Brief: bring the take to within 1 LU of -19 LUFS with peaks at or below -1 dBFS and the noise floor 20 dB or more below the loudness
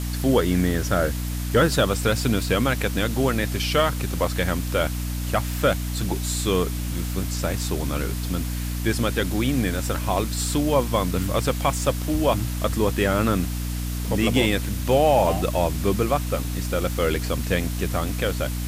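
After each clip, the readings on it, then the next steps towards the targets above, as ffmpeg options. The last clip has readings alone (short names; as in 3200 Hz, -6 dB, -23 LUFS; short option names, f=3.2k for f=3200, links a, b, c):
hum 60 Hz; harmonics up to 300 Hz; hum level -25 dBFS; noise floor -28 dBFS; noise floor target -44 dBFS; loudness -23.5 LUFS; peak -7.5 dBFS; loudness target -19.0 LUFS
-> -af "bandreject=f=60:t=h:w=6,bandreject=f=120:t=h:w=6,bandreject=f=180:t=h:w=6,bandreject=f=240:t=h:w=6,bandreject=f=300:t=h:w=6"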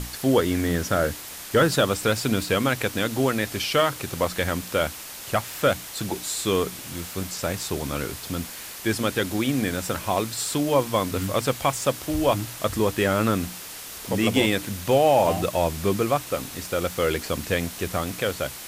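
hum none; noise floor -38 dBFS; noise floor target -45 dBFS
-> -af "afftdn=nr=7:nf=-38"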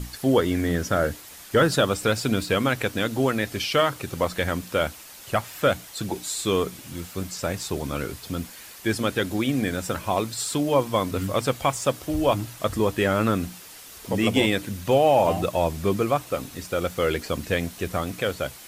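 noise floor -44 dBFS; noise floor target -45 dBFS
-> -af "afftdn=nr=6:nf=-44"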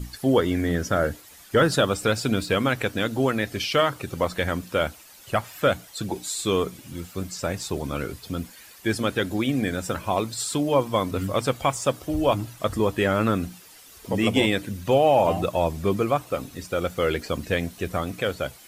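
noise floor -48 dBFS; loudness -25.0 LUFS; peak -8.0 dBFS; loudness target -19.0 LUFS
-> -af "volume=6dB"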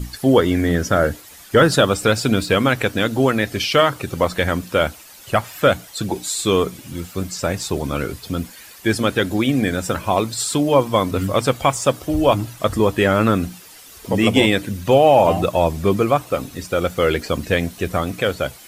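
loudness -19.0 LUFS; peak -2.0 dBFS; noise floor -42 dBFS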